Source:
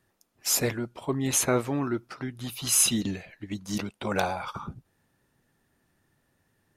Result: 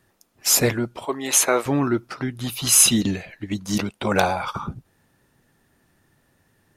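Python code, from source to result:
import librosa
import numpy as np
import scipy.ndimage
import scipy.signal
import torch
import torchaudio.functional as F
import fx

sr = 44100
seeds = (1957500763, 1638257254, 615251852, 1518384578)

y = fx.highpass(x, sr, hz=460.0, slope=12, at=(1.05, 1.66))
y = y * librosa.db_to_amplitude(7.5)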